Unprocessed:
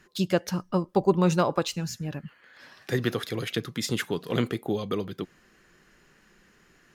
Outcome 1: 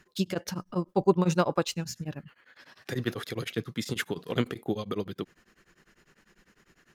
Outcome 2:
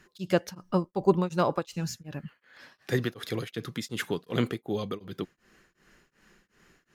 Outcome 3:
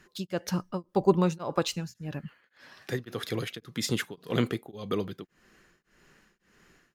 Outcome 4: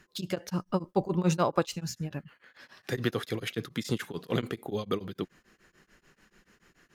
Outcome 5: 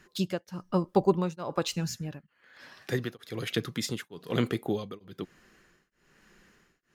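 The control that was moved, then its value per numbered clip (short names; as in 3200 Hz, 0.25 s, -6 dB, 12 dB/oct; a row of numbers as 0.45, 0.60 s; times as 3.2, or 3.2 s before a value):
beating tremolo, nulls at: 10, 2.7, 1.8, 6.9, 1.1 Hz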